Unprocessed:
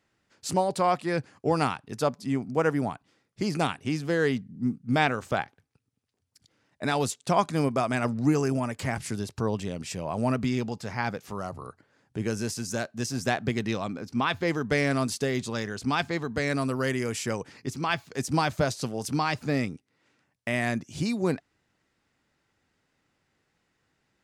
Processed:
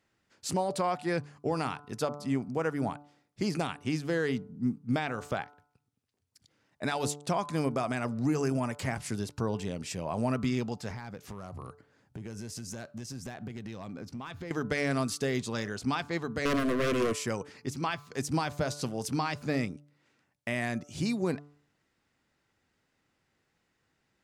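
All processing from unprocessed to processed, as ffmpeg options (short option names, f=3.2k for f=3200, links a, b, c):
-filter_complex "[0:a]asettb=1/sr,asplit=3[a][b][c];[a]atrim=end=10.904[d];[b]atrim=start=10.9:end=14.51,asetpts=PTS-STARTPTS,afade=t=in:d=0.004:c=qsin,afade=t=out:st=3.606:d=0.004:c=qsin,lowshelf=f=180:g=7.5,acompressor=threshold=-34dB:ratio=10:attack=3.2:release=140:knee=1:detection=peak,aeval=exprs='clip(val(0),-1,0.0282)':c=same[e];[c]atrim=start=14.506[f];[d][e]acrossfade=d=0.004:c1=hsin:c2=qsin[g];[g][f]acrossfade=d=0.004:c1=qsin:c2=hsin,asettb=1/sr,asplit=3[h][i][j];[h]atrim=end=16.454[k];[i]atrim=start=16.45:end=17.13,asetpts=PTS-STARTPTS,afade=t=in:d=0.004:c=qsin,afade=t=out:st=0.676:d=0.004:c=qsin,equalizer=f=370:w=0.4:g=11.5,aeval=exprs='0.126*(abs(mod(val(0)/0.126+3,4)-2)-1)':c=same,asuperstop=centerf=840:order=8:qfactor=3.1[l];[j]atrim=start=17.126[m];[k][l]acrossfade=d=0.004:c1=hsin:c2=qsin[n];[n][m]acrossfade=d=0.004:c1=qsin:c2=hsin,bandreject=f=145.7:t=h:w=4,bandreject=f=291.4:t=h:w=4,bandreject=f=437.1:t=h:w=4,bandreject=f=582.8:t=h:w=4,bandreject=f=728.5:t=h:w=4,bandreject=f=874.2:t=h:w=4,bandreject=f=1.0199k:t=h:w=4,bandreject=f=1.1656k:t=h:w=4,bandreject=f=1.3113k:t=h:w=4,bandreject=f=1.457k:t=h:w=4,alimiter=limit=-17.5dB:level=0:latency=1:release=176,volume=-2dB"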